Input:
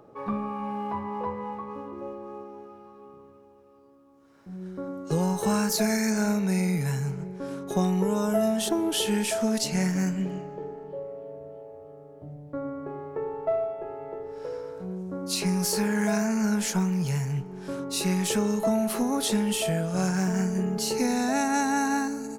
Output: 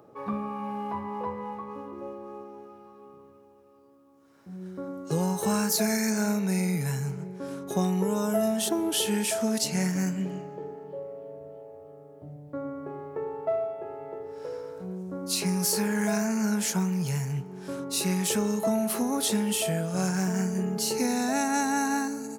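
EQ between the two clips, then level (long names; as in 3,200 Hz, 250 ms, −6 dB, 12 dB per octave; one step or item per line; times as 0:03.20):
high-pass filter 71 Hz
high-shelf EQ 8,400 Hz +7 dB
−1.5 dB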